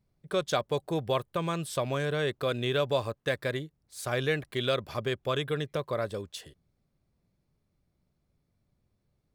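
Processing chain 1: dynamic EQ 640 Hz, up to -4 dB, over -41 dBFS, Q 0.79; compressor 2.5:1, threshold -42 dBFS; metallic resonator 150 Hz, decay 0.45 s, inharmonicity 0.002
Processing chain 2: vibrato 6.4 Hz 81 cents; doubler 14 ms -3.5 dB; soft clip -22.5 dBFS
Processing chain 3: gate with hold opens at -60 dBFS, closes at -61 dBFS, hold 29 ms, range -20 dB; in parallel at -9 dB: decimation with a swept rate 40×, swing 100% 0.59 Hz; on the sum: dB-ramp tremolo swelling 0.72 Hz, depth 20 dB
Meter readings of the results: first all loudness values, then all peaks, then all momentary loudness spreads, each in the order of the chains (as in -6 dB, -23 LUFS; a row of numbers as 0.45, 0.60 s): -54.0, -32.0, -36.5 LUFS; -37.0, -22.5, -13.5 dBFS; 9, 7, 15 LU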